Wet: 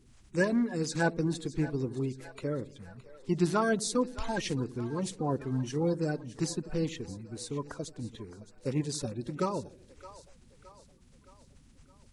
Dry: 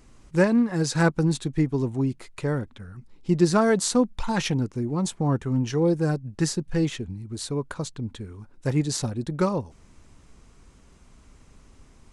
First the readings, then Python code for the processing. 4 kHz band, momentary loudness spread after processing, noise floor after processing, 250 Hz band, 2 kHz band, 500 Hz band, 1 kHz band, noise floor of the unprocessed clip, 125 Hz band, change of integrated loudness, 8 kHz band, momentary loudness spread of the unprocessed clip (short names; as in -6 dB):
-7.0 dB, 17 LU, -60 dBFS, -8.0 dB, -5.0 dB, -6.5 dB, -5.5 dB, -54 dBFS, -9.0 dB, -7.5 dB, -7.5 dB, 14 LU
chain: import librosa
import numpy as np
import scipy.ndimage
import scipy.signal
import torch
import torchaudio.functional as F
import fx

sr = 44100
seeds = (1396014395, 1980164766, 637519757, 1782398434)

p1 = fx.spec_quant(x, sr, step_db=30)
p2 = p1 + fx.echo_split(p1, sr, split_hz=480.0, low_ms=83, high_ms=617, feedback_pct=52, wet_db=-15.5, dry=0)
y = p2 * librosa.db_to_amplitude(-7.0)